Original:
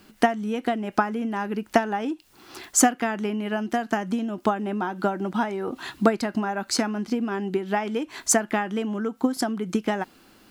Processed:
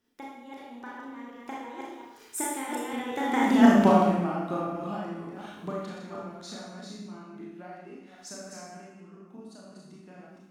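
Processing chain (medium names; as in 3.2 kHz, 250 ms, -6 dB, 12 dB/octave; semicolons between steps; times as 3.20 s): chunks repeated in reverse 216 ms, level -4 dB; Doppler pass-by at 3.66 s, 52 m/s, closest 7.9 m; Schroeder reverb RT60 0.89 s, combs from 26 ms, DRR -4 dB; trim +2.5 dB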